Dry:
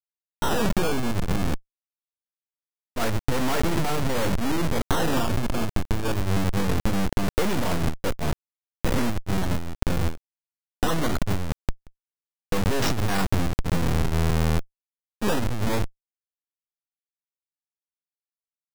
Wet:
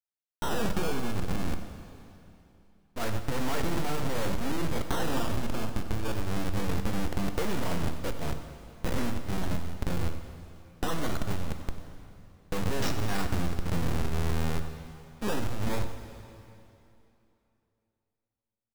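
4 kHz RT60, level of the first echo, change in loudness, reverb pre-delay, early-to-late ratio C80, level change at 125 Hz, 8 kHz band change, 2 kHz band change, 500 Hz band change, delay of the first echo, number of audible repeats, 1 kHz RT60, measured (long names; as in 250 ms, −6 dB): 2.7 s, −15.0 dB, −6.5 dB, 5 ms, 8.5 dB, −6.5 dB, −6.0 dB, −6.0 dB, −6.0 dB, 95 ms, 1, 2.9 s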